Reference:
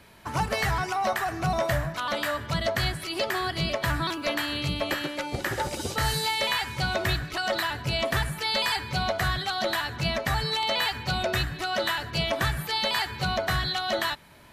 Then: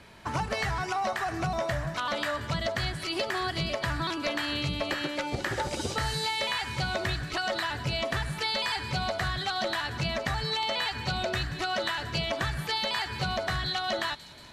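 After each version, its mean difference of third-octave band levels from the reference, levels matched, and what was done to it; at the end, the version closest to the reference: 2.5 dB: low-pass 8.1 kHz 12 dB/octave; compression, threshold -28 dBFS, peak gain reduction 7 dB; feedback echo behind a high-pass 181 ms, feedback 73%, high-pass 5 kHz, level -10.5 dB; trim +1.5 dB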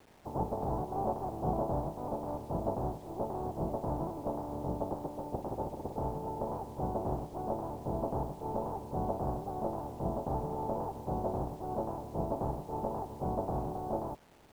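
12.5 dB: spectral contrast reduction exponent 0.31; elliptic low-pass 870 Hz, stop band 60 dB; bit crusher 10-bit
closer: first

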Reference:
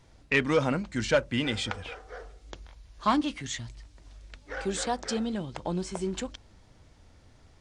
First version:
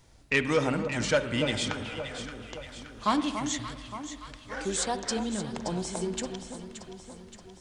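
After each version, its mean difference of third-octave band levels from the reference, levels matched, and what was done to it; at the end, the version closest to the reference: 6.5 dB: treble shelf 6.9 kHz +11.5 dB; echo whose repeats swap between lows and highs 287 ms, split 1.2 kHz, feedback 73%, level -7.5 dB; spring tank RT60 1.7 s, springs 48/56 ms, chirp 25 ms, DRR 11 dB; trim -1.5 dB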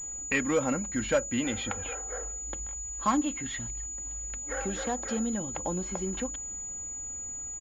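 5.0 dB: comb 3.7 ms, depth 45%; in parallel at +3 dB: compression, threshold -35 dBFS, peak gain reduction 17 dB; on the sum: class-D stage that switches slowly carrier 6.9 kHz; trim -5.5 dB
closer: second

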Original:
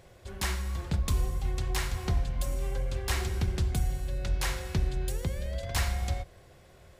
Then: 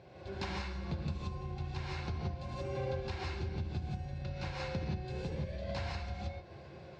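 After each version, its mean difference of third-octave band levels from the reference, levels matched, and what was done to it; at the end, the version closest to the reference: 8.0 dB: gated-style reverb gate 200 ms rising, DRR -5.5 dB; compression 6:1, threshold -31 dBFS, peak gain reduction 16 dB; cabinet simulation 110–4100 Hz, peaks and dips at 500 Hz -5 dB, 1.2 kHz -8 dB, 1.9 kHz -9 dB, 3.2 kHz -10 dB; feedback comb 530 Hz, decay 0.21 s, harmonics all, mix 60%; trim +9 dB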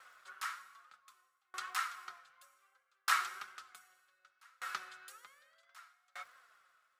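18.0 dB: flange 1.1 Hz, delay 3.7 ms, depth 2.7 ms, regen +51%; resonant high-pass 1.3 kHz, resonance Q 10; crackle 160 per s -58 dBFS; sawtooth tremolo in dB decaying 0.65 Hz, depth 37 dB; trim +2 dB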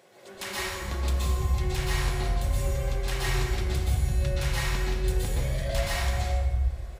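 5.5 dB: dynamic bell 2.8 kHz, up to +4 dB, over -48 dBFS, Q 1.4; peak limiter -24.5 dBFS, peak gain reduction 7 dB; bands offset in time highs, lows 340 ms, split 190 Hz; plate-style reverb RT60 1.1 s, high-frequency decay 0.7×, pre-delay 110 ms, DRR -6 dB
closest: third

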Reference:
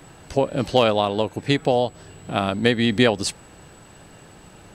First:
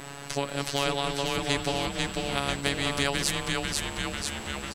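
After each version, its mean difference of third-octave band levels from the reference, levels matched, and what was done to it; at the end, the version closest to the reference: 14.0 dB: robot voice 141 Hz; on a send: frequency-shifting echo 494 ms, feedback 55%, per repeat -120 Hz, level -4.5 dB; on the sum: spectrum-flattening compressor 2:1; trim -3.5 dB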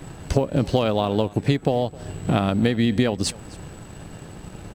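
4.5 dB: companding laws mixed up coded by A; bass shelf 350 Hz +9.5 dB; compression 10:1, threshold -24 dBFS, peak gain reduction 17 dB; on a send: delay 261 ms -22 dB; on the sum: trim +7.5 dB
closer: second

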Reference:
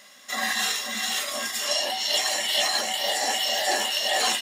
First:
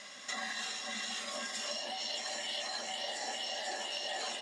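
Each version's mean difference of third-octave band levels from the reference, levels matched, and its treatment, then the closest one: 5.5 dB: low-pass 8.1 kHz 24 dB/octave; compression 6:1, threshold -39 dBFS, peak gain reduction 18 dB; on a send: feedback echo behind a low-pass 155 ms, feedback 85%, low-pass 710 Hz, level -8 dB; on the sum: trim +1.5 dB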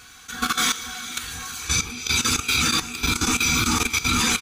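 9.0 dB: split-band scrambler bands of 500 Hz; delay 185 ms -12 dB; level held to a coarse grid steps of 13 dB; trim +5.5 dB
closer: first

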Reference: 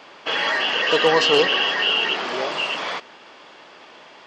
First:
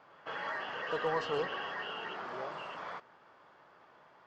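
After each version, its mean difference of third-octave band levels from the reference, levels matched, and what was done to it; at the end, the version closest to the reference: 4.5 dB: FFT filter 130 Hz 0 dB, 260 Hz -11 dB, 1.4 kHz -5 dB, 2.7 kHz -19 dB; in parallel at -11 dB: one-sided clip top -24.5 dBFS; on the sum: reverse echo 166 ms -24 dB; trim -9 dB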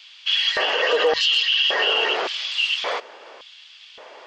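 8.0 dB: LFO high-pass square 0.88 Hz 480–3300 Hz; hum notches 50/100/150 Hz; peak limiter -10.5 dBFS, peak gain reduction 9 dB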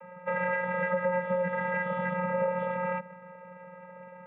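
11.5 dB: Chebyshev low-pass 2.1 kHz, order 6; compression 4:1, threshold -25 dBFS, peak gain reduction 10.5 dB; vocoder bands 16, square 180 Hz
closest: first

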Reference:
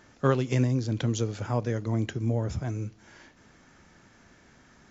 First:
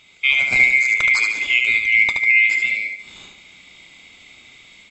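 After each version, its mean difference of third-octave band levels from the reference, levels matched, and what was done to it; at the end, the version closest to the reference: 12.0 dB: split-band scrambler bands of 2 kHz; level rider gain up to 5 dB; on a send: feedback delay 73 ms, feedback 37%, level -4.5 dB; on the sum: trim +4.5 dB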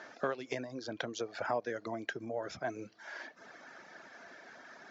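7.5 dB: reverb removal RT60 0.75 s; compression 8:1, threshold -35 dBFS, peak gain reduction 17.5 dB; cabinet simulation 380–5500 Hz, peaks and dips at 660 Hz +8 dB, 1.6 kHz +6 dB, 2.9 kHz -4 dB; trim +6 dB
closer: second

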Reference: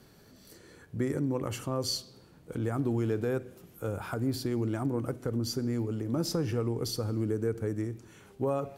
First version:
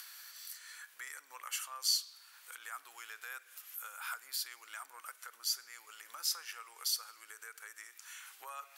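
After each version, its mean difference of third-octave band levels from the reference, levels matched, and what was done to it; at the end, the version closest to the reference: 20.0 dB: treble shelf 10 kHz +9 dB; in parallel at -1 dB: compression, threshold -41 dBFS, peak gain reduction 15 dB; on the sum: high-pass 1.3 kHz 24 dB/octave; upward compressor, threshold -43 dBFS; trim -1 dB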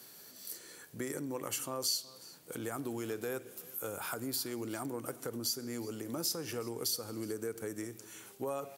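9.0 dB: high-pass 92 Hz; RIAA curve recording; compression 2:1, threshold -37 dBFS, peak gain reduction 9.5 dB; on a send: delay 370 ms -21 dB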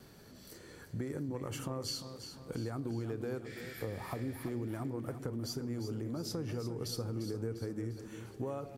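5.5 dB: spectral replace 3.48–4.43 s, 1.3–9.1 kHz after; compression 5:1, threshold -37 dBFS, peak gain reduction 11 dB; vibrato 2 Hz 22 cents; on a send: feedback delay 349 ms, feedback 49%, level -10 dB; on the sum: trim +1 dB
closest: third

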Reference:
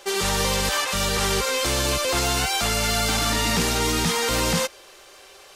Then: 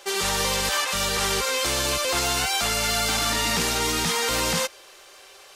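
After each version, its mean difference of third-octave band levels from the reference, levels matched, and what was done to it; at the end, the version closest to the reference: 1.5 dB: bass shelf 400 Hz -6.5 dB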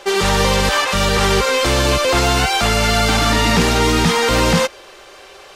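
3.0 dB: treble shelf 5.6 kHz -12 dB; trim +9 dB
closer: first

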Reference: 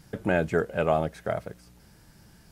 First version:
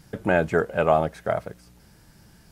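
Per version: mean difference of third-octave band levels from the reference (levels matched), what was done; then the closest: 2.0 dB: dynamic bell 970 Hz, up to +5 dB, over -37 dBFS, Q 0.86; trim +1.5 dB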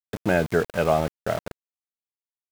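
8.5 dB: small samples zeroed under -33 dBFS; trim +3 dB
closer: first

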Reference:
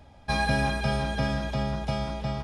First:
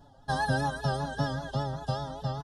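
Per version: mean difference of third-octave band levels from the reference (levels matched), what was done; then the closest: 4.0 dB: reverb removal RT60 0.52 s; comb 7.3 ms, depth 85%; vibrato 5.1 Hz 77 cents; Butterworth band-stop 2.3 kHz, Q 1.6; trim -4.5 dB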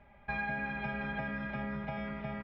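7.5 dB: four-pole ladder low-pass 2.4 kHz, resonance 60%; on a send: delay 92 ms -5.5 dB; on the sum: compression, threshold -37 dBFS, peak gain reduction 9 dB; comb 5 ms, depth 57%; trim +1.5 dB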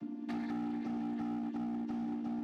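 11.0 dB: vocoder on a held chord major triad, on A#3; resonant low shelf 410 Hz +11.5 dB, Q 3; compression 3:1, threshold -38 dBFS, peak gain reduction 22.5 dB; hard clipper -34.5 dBFS, distortion -9 dB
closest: first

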